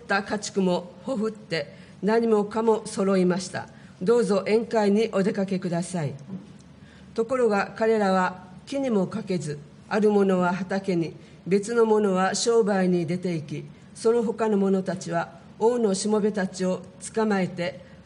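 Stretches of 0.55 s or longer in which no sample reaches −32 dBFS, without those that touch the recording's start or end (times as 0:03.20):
0:06.37–0:07.16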